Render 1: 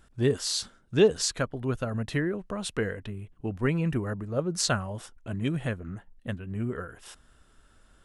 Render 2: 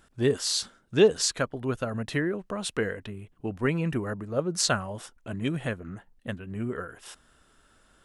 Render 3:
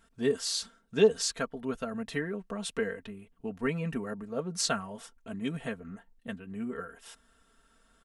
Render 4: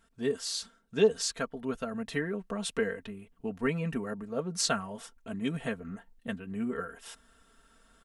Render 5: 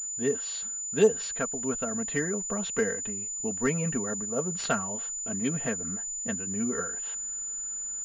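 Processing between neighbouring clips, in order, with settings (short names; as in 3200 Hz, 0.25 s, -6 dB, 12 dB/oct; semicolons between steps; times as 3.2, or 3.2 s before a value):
low shelf 120 Hz -9.5 dB; gain +2 dB
comb 4.4 ms, depth 75%; gain -6.5 dB
vocal rider within 4 dB 2 s; gain -1 dB
pulse-width modulation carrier 7000 Hz; gain +2.5 dB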